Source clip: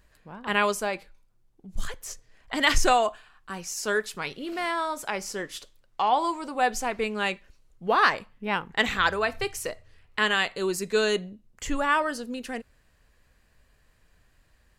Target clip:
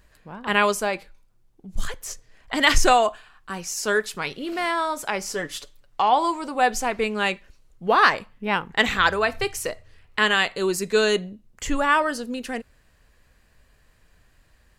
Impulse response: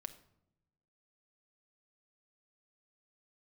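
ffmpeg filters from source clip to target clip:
-filter_complex "[0:a]asettb=1/sr,asplit=3[a][b][c];[a]atrim=end=5.304[d];[b]atrim=start=5.3:end=6.01,asetpts=PTS-STARTPTS,afade=t=in:d=0.004:c=qsin,afade=t=out:st=0.706:d=0.004:c=qsin,aecho=1:1:6.9:0.56,atrim=end_sample=31311[e];[c]atrim=start=6.006[f];[d][e]acrossfade=d=0.004:c1=hsin:c2=qsin[g];[g][f]acrossfade=d=0.004:c1=qsin:c2=hsin,volume=4dB"

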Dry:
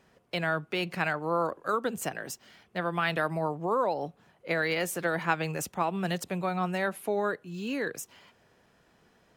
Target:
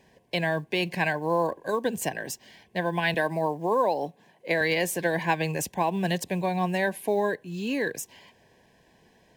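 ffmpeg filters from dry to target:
-filter_complex "[0:a]asuperstop=centerf=1300:order=12:qfactor=3.2,acrusher=bits=9:mode=log:mix=0:aa=0.000001,asettb=1/sr,asplit=3[a][b][c];[a]atrim=end=3.144[d];[b]atrim=start=3.14:end=4.61,asetpts=PTS-STARTPTS,afade=t=in:d=0.004:c=qsin,afade=t=out:st=1.466:d=0.004:c=qsin,highpass=170[e];[c]atrim=start=4.606[f];[d][e]acrossfade=d=0.004:c1=hsin:c2=qsin[g];[g][f]acrossfade=d=0.004:c1=qsin:c2=hsin,volume=4dB"

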